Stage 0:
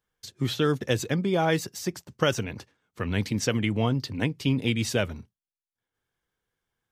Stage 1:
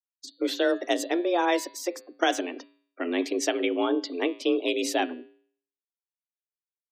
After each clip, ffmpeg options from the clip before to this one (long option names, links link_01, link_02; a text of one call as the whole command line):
ffmpeg -i in.wav -af "afftfilt=real='re*gte(hypot(re,im),0.00631)':imag='im*gte(hypot(re,im),0.00631)':win_size=1024:overlap=0.75,bandreject=frequency=115.5:width_type=h:width=4,bandreject=frequency=231:width_type=h:width=4,bandreject=frequency=346.5:width_type=h:width=4,bandreject=frequency=462:width_type=h:width=4,bandreject=frequency=577.5:width_type=h:width=4,bandreject=frequency=693:width_type=h:width=4,bandreject=frequency=808.5:width_type=h:width=4,bandreject=frequency=924:width_type=h:width=4,bandreject=frequency=1039.5:width_type=h:width=4,bandreject=frequency=1155:width_type=h:width=4,bandreject=frequency=1270.5:width_type=h:width=4,bandreject=frequency=1386:width_type=h:width=4,bandreject=frequency=1501.5:width_type=h:width=4,bandreject=frequency=1617:width_type=h:width=4,bandreject=frequency=1732.5:width_type=h:width=4,bandreject=frequency=1848:width_type=h:width=4,bandreject=frequency=1963.5:width_type=h:width=4,bandreject=frequency=2079:width_type=h:width=4,bandreject=frequency=2194.5:width_type=h:width=4,bandreject=frequency=2310:width_type=h:width=4,bandreject=frequency=2425.5:width_type=h:width=4,bandreject=frequency=2541:width_type=h:width=4,bandreject=frequency=2656.5:width_type=h:width=4,bandreject=frequency=2772:width_type=h:width=4,bandreject=frequency=2887.5:width_type=h:width=4,bandreject=frequency=3003:width_type=h:width=4,bandreject=frequency=3118.5:width_type=h:width=4,bandreject=frequency=3234:width_type=h:width=4,bandreject=frequency=3349.5:width_type=h:width=4,bandreject=frequency=3465:width_type=h:width=4,bandreject=frequency=3580.5:width_type=h:width=4,bandreject=frequency=3696:width_type=h:width=4,bandreject=frequency=3811.5:width_type=h:width=4,bandreject=frequency=3927:width_type=h:width=4,bandreject=frequency=4042.5:width_type=h:width=4,bandreject=frequency=4158:width_type=h:width=4,bandreject=frequency=4273.5:width_type=h:width=4,bandreject=frequency=4389:width_type=h:width=4,bandreject=frequency=4504.5:width_type=h:width=4,afreqshift=170" out.wav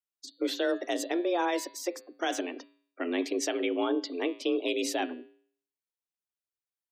ffmpeg -i in.wav -af "alimiter=limit=-17dB:level=0:latency=1:release=25,volume=-2.5dB" out.wav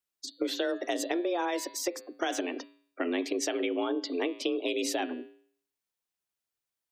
ffmpeg -i in.wav -af "acompressor=threshold=-32dB:ratio=6,volume=5dB" out.wav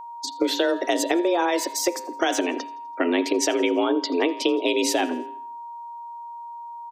ffmpeg -i in.wav -af "aeval=exprs='val(0)+0.00631*sin(2*PI*940*n/s)':channel_layout=same,aecho=1:1:83|166|249|332:0.0708|0.0375|0.0199|0.0105,volume=8.5dB" out.wav